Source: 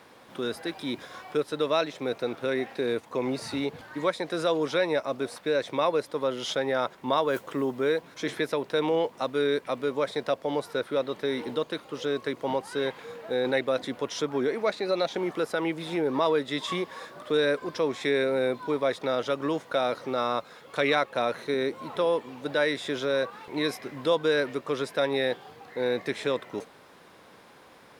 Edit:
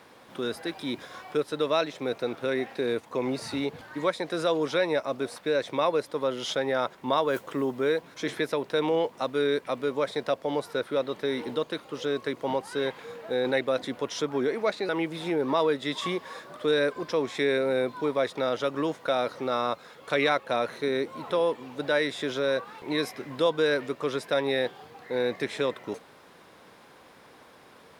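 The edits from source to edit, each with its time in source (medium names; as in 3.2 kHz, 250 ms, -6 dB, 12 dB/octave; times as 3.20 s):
14.89–15.55 s: delete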